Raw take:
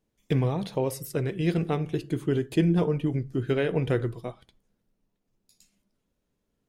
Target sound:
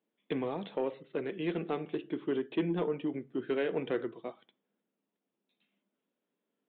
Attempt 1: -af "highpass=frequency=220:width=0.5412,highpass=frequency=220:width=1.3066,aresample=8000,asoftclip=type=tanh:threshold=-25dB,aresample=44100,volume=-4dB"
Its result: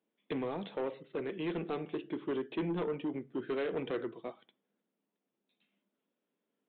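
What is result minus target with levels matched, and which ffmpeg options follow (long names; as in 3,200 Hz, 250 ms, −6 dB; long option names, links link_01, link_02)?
soft clipping: distortion +9 dB
-af "highpass=frequency=220:width=0.5412,highpass=frequency=220:width=1.3066,aresample=8000,asoftclip=type=tanh:threshold=-17.5dB,aresample=44100,volume=-4dB"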